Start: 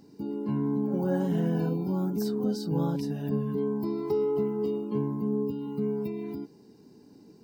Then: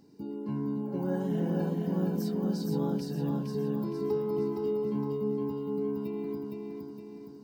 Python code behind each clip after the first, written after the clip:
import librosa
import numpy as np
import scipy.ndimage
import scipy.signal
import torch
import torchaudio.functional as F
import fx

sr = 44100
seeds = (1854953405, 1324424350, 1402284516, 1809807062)

y = fx.echo_feedback(x, sr, ms=464, feedback_pct=50, wet_db=-3)
y = F.gain(torch.from_numpy(y), -4.5).numpy()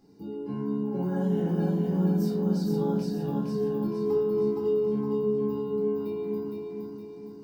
y = fx.room_shoebox(x, sr, seeds[0], volume_m3=450.0, walls='furnished', distance_m=3.9)
y = F.gain(torch.from_numpy(y), -5.0).numpy()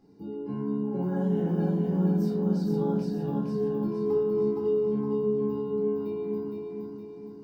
y = fx.high_shelf(x, sr, hz=3500.0, db=-8.5)